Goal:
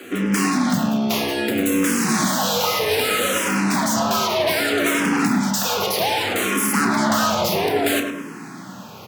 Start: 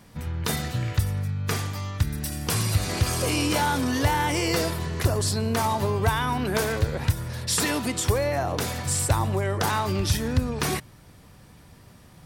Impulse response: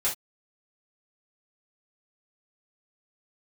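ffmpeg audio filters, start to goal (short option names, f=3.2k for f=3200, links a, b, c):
-filter_complex "[0:a]equalizer=f=1.1k:t=o:w=2.9:g=5.5,bandreject=f=50:t=h:w=6,bandreject=f=100:t=h:w=6,asplit=2[a][b];[b]aeval=exprs='0.398*sin(PI/2*8.91*val(0)/0.398)':c=same,volume=-11.5dB[c];[a][c]amix=inputs=2:normalize=0,afreqshift=64,asplit=2[d][e];[e]adelay=42,volume=-10.5dB[f];[d][f]amix=inputs=2:normalize=0,asplit=2[g][h];[h]adelay=142,lowpass=f=1.4k:p=1,volume=-4.5dB,asplit=2[i][j];[j]adelay=142,lowpass=f=1.4k:p=1,volume=0.55,asplit=2[k][l];[l]adelay=142,lowpass=f=1.4k:p=1,volume=0.55,asplit=2[m][n];[n]adelay=142,lowpass=f=1.4k:p=1,volume=0.55,asplit=2[o][p];[p]adelay=142,lowpass=f=1.4k:p=1,volume=0.55,asplit=2[q][r];[r]adelay=142,lowpass=f=1.4k:p=1,volume=0.55,asplit=2[s][t];[t]adelay=142,lowpass=f=1.4k:p=1,volume=0.55[u];[i][k][m][o][q][s][u]amix=inputs=7:normalize=0[v];[g][v]amix=inputs=2:normalize=0,asetrate=59535,aresample=44100,asplit=2[w][x];[x]afreqshift=-0.63[y];[w][y]amix=inputs=2:normalize=1"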